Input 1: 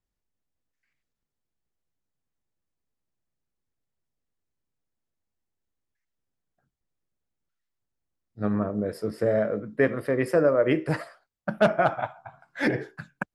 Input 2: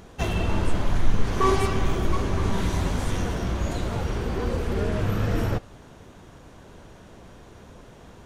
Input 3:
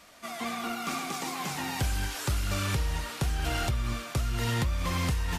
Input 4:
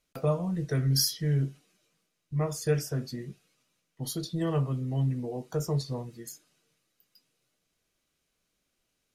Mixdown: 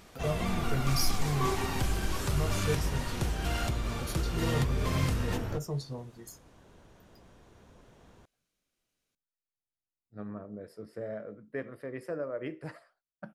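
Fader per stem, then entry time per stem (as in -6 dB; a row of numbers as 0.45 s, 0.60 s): -15.0 dB, -10.5 dB, -3.5 dB, -5.5 dB; 1.75 s, 0.00 s, 0.00 s, 0.00 s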